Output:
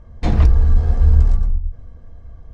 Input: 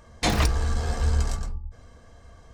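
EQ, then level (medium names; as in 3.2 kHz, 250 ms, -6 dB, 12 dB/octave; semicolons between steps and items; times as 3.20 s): distance through air 69 m; tilt EQ -3.5 dB/octave; treble shelf 9.4 kHz +7 dB; -3.0 dB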